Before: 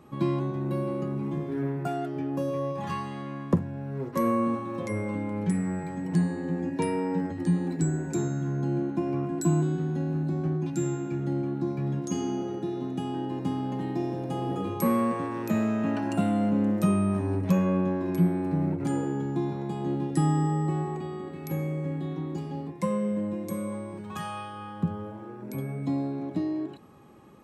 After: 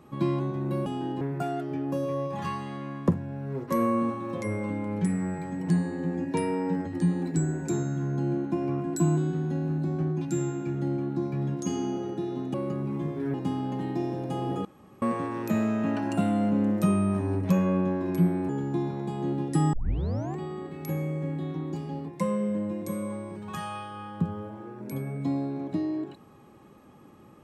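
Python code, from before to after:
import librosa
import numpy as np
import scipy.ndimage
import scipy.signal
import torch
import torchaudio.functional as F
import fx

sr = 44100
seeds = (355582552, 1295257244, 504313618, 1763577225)

y = fx.edit(x, sr, fx.swap(start_s=0.86, length_s=0.8, other_s=12.99, other_length_s=0.35),
    fx.room_tone_fill(start_s=14.65, length_s=0.37),
    fx.cut(start_s=18.49, length_s=0.62),
    fx.tape_start(start_s=20.35, length_s=0.64), tone=tone)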